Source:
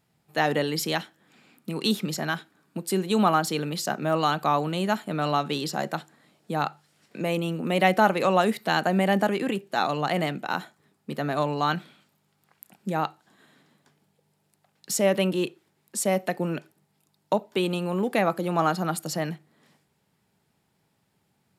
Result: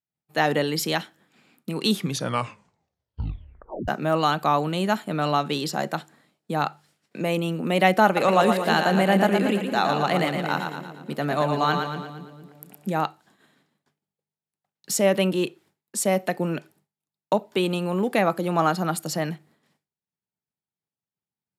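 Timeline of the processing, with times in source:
1.88 tape stop 2.00 s
8.05–13.01 split-band echo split 480 Hz, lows 0.228 s, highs 0.115 s, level -5.5 dB
whole clip: expander -53 dBFS; gain +2 dB

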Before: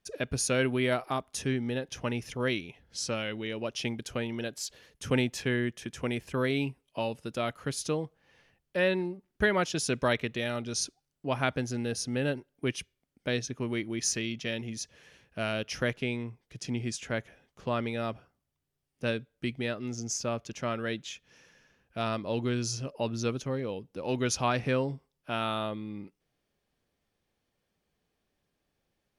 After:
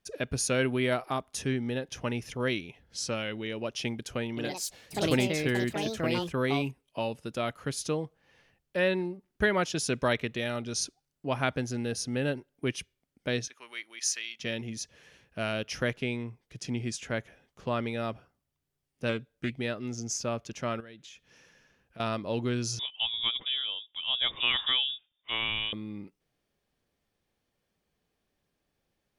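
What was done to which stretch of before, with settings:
4.29–7.24 echoes that change speed 80 ms, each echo +4 st, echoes 2
13.48–14.4 HPF 1300 Hz
19.09–19.58 Doppler distortion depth 0.18 ms
20.8–22 compressor, threshold -46 dBFS
22.79–25.73 inverted band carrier 3600 Hz

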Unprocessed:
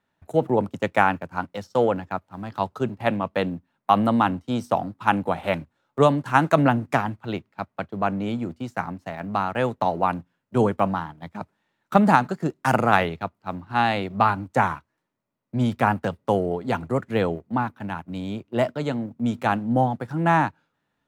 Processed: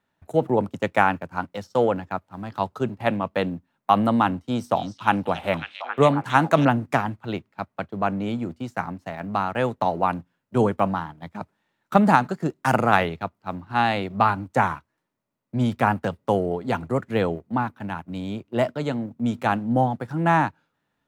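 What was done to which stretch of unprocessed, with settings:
4.41–6.65 delay with a stepping band-pass 0.272 s, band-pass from 4200 Hz, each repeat -0.7 oct, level -1 dB

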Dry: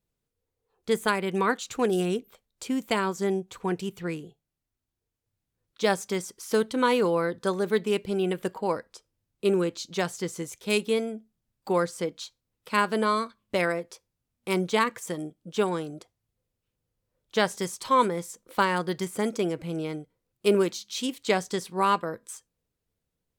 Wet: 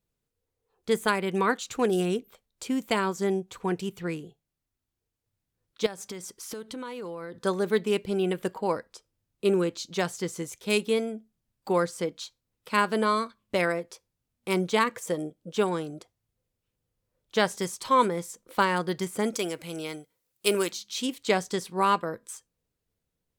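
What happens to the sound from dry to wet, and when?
5.86–7.45 compressor 8:1, threshold -34 dBFS
14.92–15.54 bell 510 Hz +7 dB 0.6 oct
19.34–20.72 tilt +3 dB/oct

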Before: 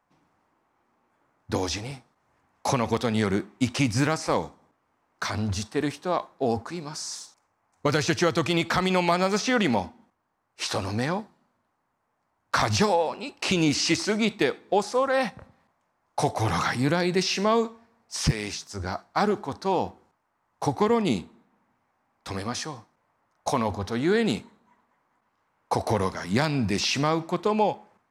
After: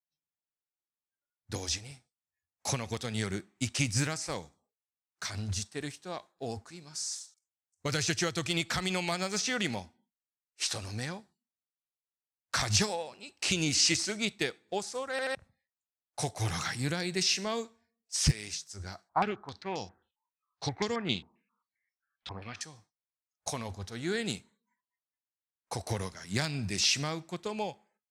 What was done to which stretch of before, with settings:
15.11 stutter in place 0.08 s, 3 plays
19.09–22.61 stepped low-pass 7.5 Hz 950–5600 Hz
whole clip: spectral noise reduction 23 dB; graphic EQ 250/500/1000/8000 Hz -7/-5/-9/+7 dB; upward expander 1.5:1, over -39 dBFS

